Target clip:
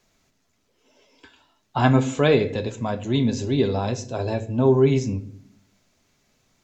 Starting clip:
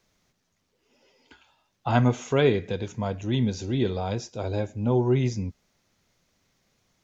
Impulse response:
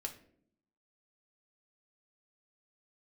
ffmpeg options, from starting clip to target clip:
-filter_complex "[0:a]asetrate=46746,aresample=44100,asplit=2[a][b];[1:a]atrim=start_sample=2205[c];[b][c]afir=irnorm=-1:irlink=0,volume=4dB[d];[a][d]amix=inputs=2:normalize=0,volume=-3dB"

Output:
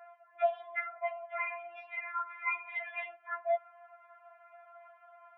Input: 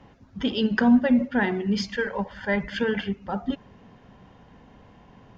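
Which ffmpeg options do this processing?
-filter_complex "[0:a]asplit=3[a][b][c];[a]afade=t=out:st=0.5:d=0.02[d];[b]acompressor=threshold=-24dB:ratio=5,afade=t=in:st=0.5:d=0.02,afade=t=out:st=2.97:d=0.02[e];[c]afade=t=in:st=2.97:d=0.02[f];[d][e][f]amix=inputs=3:normalize=0,highpass=f=170:t=q:w=0.5412,highpass=f=170:t=q:w=1.307,lowpass=f=2k:t=q:w=0.5176,lowpass=f=2k:t=q:w=0.7071,lowpass=f=2k:t=q:w=1.932,afreqshift=400,afftfilt=real='re*4*eq(mod(b,16),0)':imag='im*4*eq(mod(b,16),0)':win_size=2048:overlap=0.75"

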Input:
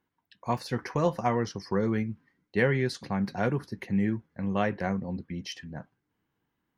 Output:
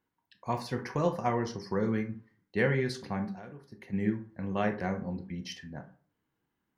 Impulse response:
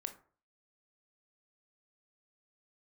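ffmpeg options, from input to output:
-filter_complex "[0:a]asplit=3[a][b][c];[a]afade=t=out:st=3.25:d=0.02[d];[b]acompressor=threshold=-40dB:ratio=16,afade=t=in:st=3.25:d=0.02,afade=t=out:st=3.92:d=0.02[e];[c]afade=t=in:st=3.92:d=0.02[f];[d][e][f]amix=inputs=3:normalize=0[g];[1:a]atrim=start_sample=2205[h];[g][h]afir=irnorm=-1:irlink=0"

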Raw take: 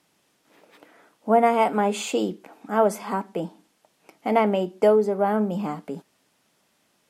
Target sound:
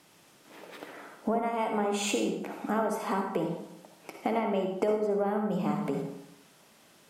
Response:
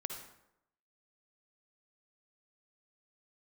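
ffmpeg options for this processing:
-filter_complex "[0:a]acompressor=threshold=-33dB:ratio=12[a];[1:a]atrim=start_sample=2205[b];[a][b]afir=irnorm=-1:irlink=0,volume=8.5dB"

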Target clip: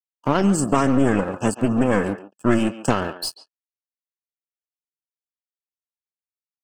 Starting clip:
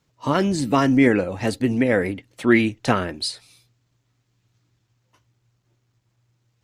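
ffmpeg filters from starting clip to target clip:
-filter_complex "[0:a]aeval=exprs='sgn(val(0))*max(abs(val(0))-0.0282,0)':c=same,asuperstop=centerf=2100:order=20:qfactor=3,acontrast=24,highpass=f=110:p=1,equalizer=f=3.8k:w=5.9:g=-14.5,aeval=exprs='clip(val(0),-1,0.0596)':c=same,asettb=1/sr,asplit=3[a][b][c];[a]atrim=end=0.434[d];[b]atrim=start=0.43:end=2.9,asetpts=PTS-STARTPTS,afade=t=in:d=0.004:c=qsin,afade=t=out:st=2.466:d=0.004:c=qsin,equalizer=f=200:t=o:w=0.33:g=6,equalizer=f=1.25k:t=o:w=0.33:g=4,equalizer=f=4k:t=o:w=0.33:g=-7,equalizer=f=8k:t=o:w=0.33:g=11[e];[c]atrim=start=2.896[f];[d][e]acrossfade=d=0.004:c1=hsin:c2=qsin[g];[g][f]acrossfade=d=0.004:c1=qsin:c2=hsin,afftdn=nr=13:nf=-41,acompressor=threshold=-15dB:ratio=2.5,asplit=2[h][i];[i]adelay=140,highpass=300,lowpass=3.4k,asoftclip=type=hard:threshold=-16.5dB,volume=-12dB[j];[h][j]amix=inputs=2:normalize=0,volume=1.5dB"

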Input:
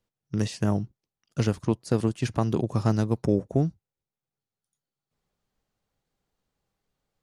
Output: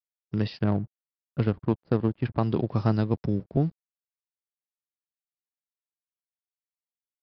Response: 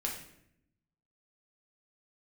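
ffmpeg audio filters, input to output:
-filter_complex "[0:a]asettb=1/sr,asplit=3[a][b][c];[a]atrim=end=3.144[d];[b]atrim=start=3.14:end=3.57,asetpts=PTS-STARTPTS,afade=t=in:d=0.004:c=qsin,afade=t=out:st=0.426:d=0.004:c=qsin,acrossover=split=280|3000[e][f][g];[f]acompressor=threshold=-44dB:ratio=2.5[h];[e][h][g]amix=inputs=3:normalize=0[i];[c]atrim=start=3.566[j];[d][i]acrossfade=d=0.004:c1=hsin:c2=qsin[k];[k][j]acrossfade=d=0.004:c1=qsin:c2=hsin,aeval=exprs='sgn(val(0))*max(abs(val(0))-0.00237,0)':c=same,asettb=1/sr,asplit=3[l][m][n];[l]atrim=end=0.624[o];[m]atrim=start=0.62:end=2.4,asetpts=PTS-STARTPTS,afade=t=in:d=0.004:c=qsin,afade=t=out:st=1.776:d=0.004:c=qsin,adynamicsmooth=sensitivity=3.5:basefreq=1k[p];[n]atrim=start=2.396[q];[o][p]acrossfade=d=0.004:c1=hsin:c2=qsin[r];[r][q]acrossfade=d=0.004:c1=qsin:c2=hsin,aresample=11025,aresample=44100"

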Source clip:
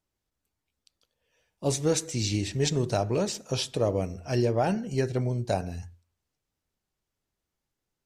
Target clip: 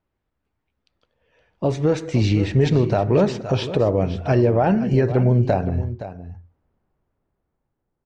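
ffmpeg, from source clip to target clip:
-af "asetnsamples=n=441:p=0,asendcmd='5.65 lowpass f 1100',lowpass=2.1k,alimiter=level_in=0.5dB:limit=-24dB:level=0:latency=1:release=354,volume=-0.5dB,dynaudnorm=f=430:g=7:m=9dB,aecho=1:1:518:0.224,volume=7.5dB"

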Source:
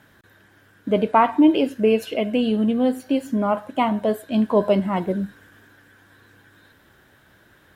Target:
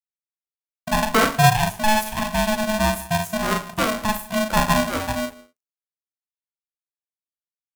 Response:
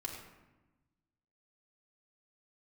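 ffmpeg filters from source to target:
-filter_complex "[0:a]aeval=exprs='sgn(val(0))*max(abs(val(0))-0.00944,0)':c=same,aexciter=amount=3.3:drive=8:freq=5.5k,afreqshift=-13,aecho=1:1:38|61:0.531|0.266,asplit=2[a][b];[1:a]atrim=start_sample=2205,atrim=end_sample=6174,adelay=70[c];[b][c]afir=irnorm=-1:irlink=0,volume=-14dB[d];[a][d]amix=inputs=2:normalize=0,aeval=exprs='val(0)*sgn(sin(2*PI*430*n/s))':c=same,volume=-2dB"

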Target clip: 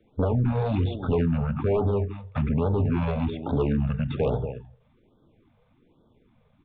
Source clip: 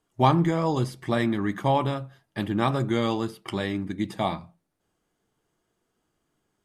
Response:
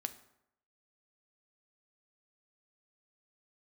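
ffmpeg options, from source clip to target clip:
-filter_complex "[0:a]acrossover=split=81|1500[a][b][c];[a]acompressor=threshold=-45dB:ratio=4[d];[b]acompressor=threshold=-34dB:ratio=4[e];[c]acompressor=threshold=-47dB:ratio=4[f];[d][e][f]amix=inputs=3:normalize=0,tiltshelf=f=920:g=5,aecho=1:1:233:0.188,aresample=11025,asoftclip=type=tanh:threshold=-14dB,aresample=44100,alimiter=level_in=0.5dB:limit=-24dB:level=0:latency=1:release=33,volume=-0.5dB,equalizer=f=580:w=3.3:g=9,asetrate=32097,aresample=44100,atempo=1.37395,acrossover=split=400[g][h];[h]crystalizer=i=2:c=0[i];[g][i]amix=inputs=2:normalize=0,aeval=exprs='0.126*sin(PI/2*2.24*val(0)/0.126)':c=same,afftfilt=real='re*(1-between(b*sr/1024,290*pow(2300/290,0.5+0.5*sin(2*PI*1.2*pts/sr))/1.41,290*pow(2300/290,0.5+0.5*sin(2*PI*1.2*pts/sr))*1.41))':imag='im*(1-between(b*sr/1024,290*pow(2300/290,0.5+0.5*sin(2*PI*1.2*pts/sr))/1.41,290*pow(2300/290,0.5+0.5*sin(2*PI*1.2*pts/sr))*1.41))':win_size=1024:overlap=0.75"

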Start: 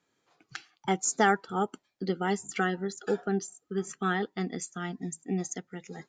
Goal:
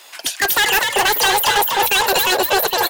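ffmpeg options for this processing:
-filter_complex "[0:a]lowshelf=f=86:g=-10,asplit=2[a][b];[b]highpass=f=720:p=1,volume=39dB,asoftclip=type=tanh:threshold=-9.5dB[c];[a][c]amix=inputs=2:normalize=0,lowpass=f=6.6k:p=1,volume=-6dB,asplit=2[d][e];[e]asoftclip=type=tanh:threshold=-26.5dB,volume=-6.5dB[f];[d][f]amix=inputs=2:normalize=0,asetrate=92610,aresample=44100,asplit=6[g][h][i][j][k][l];[h]adelay=241,afreqshift=84,volume=-4.5dB[m];[i]adelay=482,afreqshift=168,volume=-13.1dB[n];[j]adelay=723,afreqshift=252,volume=-21.8dB[o];[k]adelay=964,afreqshift=336,volume=-30.4dB[p];[l]adelay=1205,afreqshift=420,volume=-39dB[q];[g][m][n][o][p][q]amix=inputs=6:normalize=0"

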